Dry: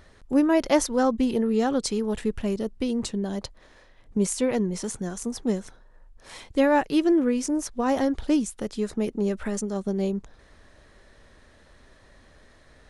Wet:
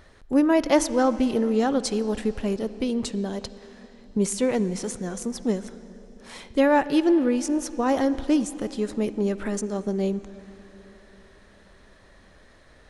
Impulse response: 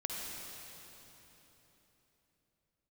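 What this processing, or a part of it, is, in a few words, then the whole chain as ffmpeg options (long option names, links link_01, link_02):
filtered reverb send: -filter_complex "[0:a]asplit=2[link_01][link_02];[link_02]highpass=190,lowpass=5600[link_03];[1:a]atrim=start_sample=2205[link_04];[link_03][link_04]afir=irnorm=-1:irlink=0,volume=-13.5dB[link_05];[link_01][link_05]amix=inputs=2:normalize=0"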